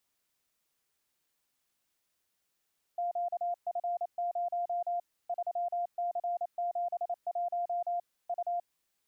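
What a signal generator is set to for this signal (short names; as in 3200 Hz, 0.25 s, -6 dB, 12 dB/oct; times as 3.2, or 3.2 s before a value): Morse "QF0 3C71 U" 28 wpm 699 Hz -29.5 dBFS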